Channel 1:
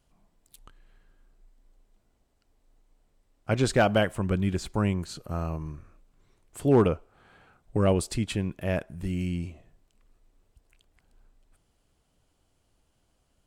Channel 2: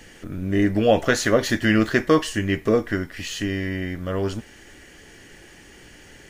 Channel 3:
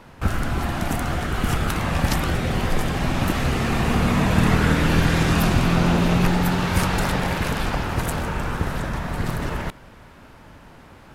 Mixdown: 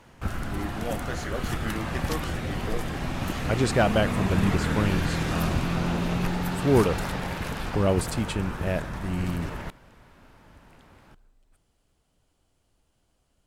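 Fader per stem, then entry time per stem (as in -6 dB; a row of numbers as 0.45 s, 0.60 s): 0.0 dB, -16.0 dB, -8.0 dB; 0.00 s, 0.00 s, 0.00 s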